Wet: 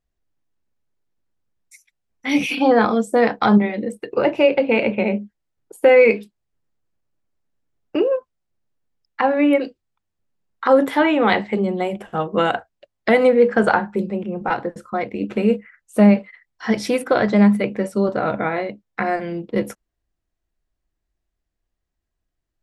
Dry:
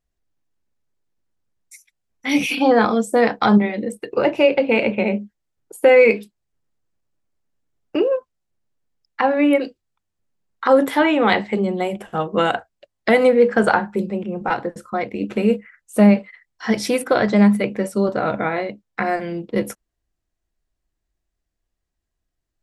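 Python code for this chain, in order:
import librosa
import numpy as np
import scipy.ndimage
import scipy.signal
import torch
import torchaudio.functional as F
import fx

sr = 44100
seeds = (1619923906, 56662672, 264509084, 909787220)

y = fx.high_shelf(x, sr, hz=5600.0, db=-7.0)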